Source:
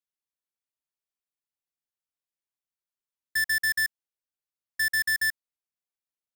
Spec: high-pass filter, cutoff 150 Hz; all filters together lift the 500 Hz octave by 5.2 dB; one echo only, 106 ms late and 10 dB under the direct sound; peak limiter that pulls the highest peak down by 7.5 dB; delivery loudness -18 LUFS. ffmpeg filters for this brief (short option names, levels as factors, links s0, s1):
-af "highpass=150,equalizer=f=500:t=o:g=6,alimiter=level_in=2.11:limit=0.0631:level=0:latency=1,volume=0.473,aecho=1:1:106:0.316,volume=5.96"